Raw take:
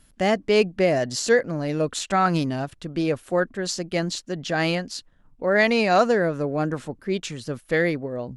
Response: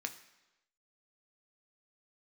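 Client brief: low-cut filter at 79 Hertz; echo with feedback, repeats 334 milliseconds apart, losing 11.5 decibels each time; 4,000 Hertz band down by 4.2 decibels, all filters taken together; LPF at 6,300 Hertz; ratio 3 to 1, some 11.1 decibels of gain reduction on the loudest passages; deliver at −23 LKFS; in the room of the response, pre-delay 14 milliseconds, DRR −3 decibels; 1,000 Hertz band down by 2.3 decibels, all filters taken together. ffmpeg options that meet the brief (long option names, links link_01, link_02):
-filter_complex "[0:a]highpass=79,lowpass=6300,equalizer=frequency=1000:width_type=o:gain=-3.5,equalizer=frequency=4000:width_type=o:gain=-4.5,acompressor=threshold=-30dB:ratio=3,aecho=1:1:334|668|1002:0.266|0.0718|0.0194,asplit=2[link_01][link_02];[1:a]atrim=start_sample=2205,adelay=14[link_03];[link_02][link_03]afir=irnorm=-1:irlink=0,volume=3dB[link_04];[link_01][link_04]amix=inputs=2:normalize=0,volume=5.5dB"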